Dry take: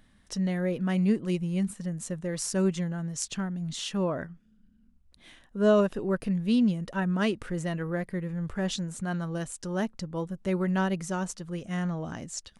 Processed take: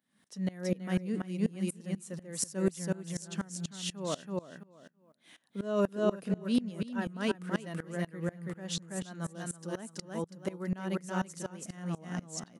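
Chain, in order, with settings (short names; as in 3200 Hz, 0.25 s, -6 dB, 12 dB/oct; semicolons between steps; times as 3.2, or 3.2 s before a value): HPF 150 Hz 24 dB/oct; high shelf 9500 Hz +10.5 dB; on a send: feedback echo 0.329 s, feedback 21%, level -3.5 dB; on the sum: dB-ramp tremolo swelling 4.1 Hz, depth 23 dB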